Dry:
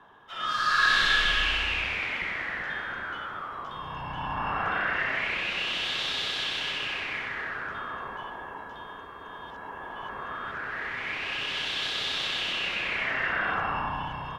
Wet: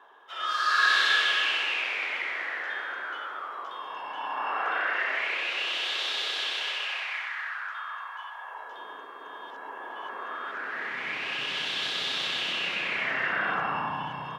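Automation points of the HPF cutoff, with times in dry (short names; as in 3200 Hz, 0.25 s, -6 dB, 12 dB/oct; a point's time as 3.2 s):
HPF 24 dB/oct
6.48 s 360 Hz
7.38 s 920 Hz
8.33 s 920 Hz
8.87 s 290 Hz
10.47 s 290 Hz
11.16 s 130 Hz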